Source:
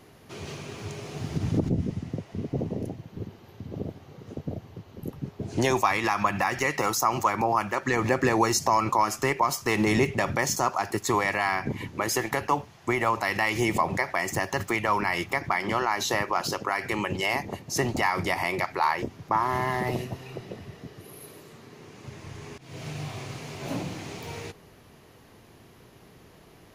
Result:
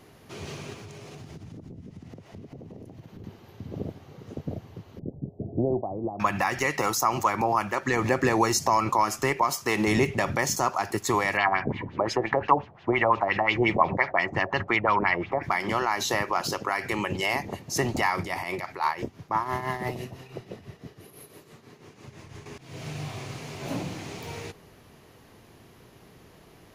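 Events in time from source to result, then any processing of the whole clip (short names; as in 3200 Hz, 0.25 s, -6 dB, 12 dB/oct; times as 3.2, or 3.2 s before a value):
0.73–3.24 compressor 12:1, threshold -39 dBFS
4.99–6.2 elliptic low-pass 680 Hz, stop band 60 dB
9.44–9.88 HPF 150 Hz 6 dB/oct
11.37–15.43 LFO low-pass sine 5.7 Hz 570–3800 Hz
18.16–22.46 tremolo triangle 6 Hz, depth 70%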